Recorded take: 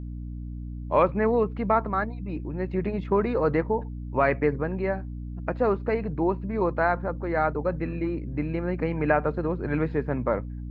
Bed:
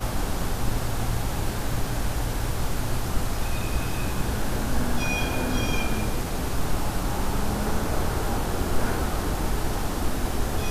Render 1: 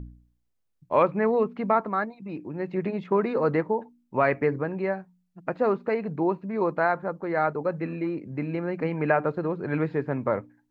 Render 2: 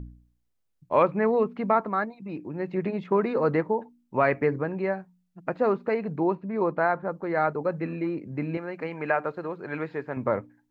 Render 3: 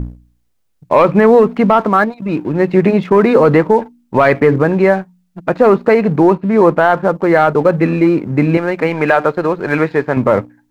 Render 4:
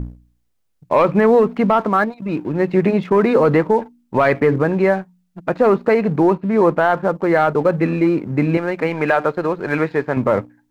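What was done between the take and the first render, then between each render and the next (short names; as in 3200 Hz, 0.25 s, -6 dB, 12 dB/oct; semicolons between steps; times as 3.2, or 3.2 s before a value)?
de-hum 60 Hz, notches 5
6.35–7.11 LPF 3000 Hz 6 dB/oct; 8.57–10.17 low shelf 360 Hz -12 dB
sample leveller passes 1; maximiser +14 dB
gain -4.5 dB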